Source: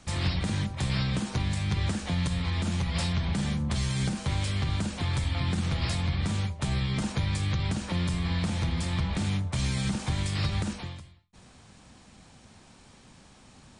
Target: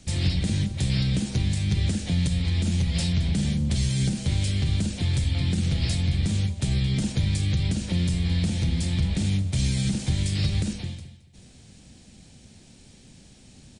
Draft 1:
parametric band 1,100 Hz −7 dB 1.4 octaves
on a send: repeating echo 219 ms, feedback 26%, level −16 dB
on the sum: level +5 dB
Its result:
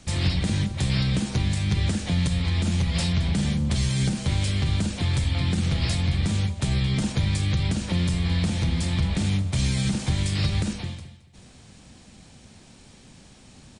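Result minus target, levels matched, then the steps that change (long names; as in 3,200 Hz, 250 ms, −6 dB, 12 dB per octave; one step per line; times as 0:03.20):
1,000 Hz band +7.0 dB
change: parametric band 1,100 Hz −17 dB 1.4 octaves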